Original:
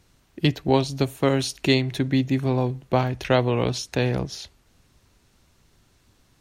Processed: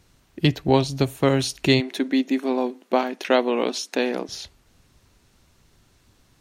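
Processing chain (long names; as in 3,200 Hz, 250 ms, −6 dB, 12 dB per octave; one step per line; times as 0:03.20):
0:01.80–0:04.29: linear-phase brick-wall high-pass 200 Hz
level +1.5 dB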